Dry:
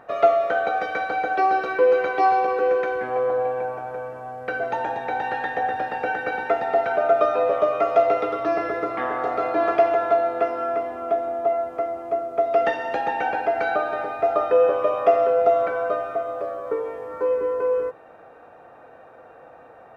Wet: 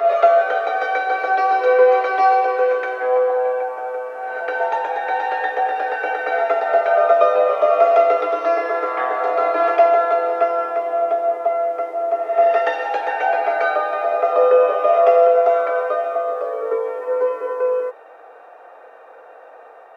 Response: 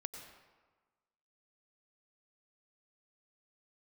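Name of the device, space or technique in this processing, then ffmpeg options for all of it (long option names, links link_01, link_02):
ghost voice: -filter_complex "[0:a]areverse[link_01];[1:a]atrim=start_sample=2205[link_02];[link_01][link_02]afir=irnorm=-1:irlink=0,areverse,highpass=frequency=420:width=0.5412,highpass=frequency=420:width=1.3066,volume=7dB"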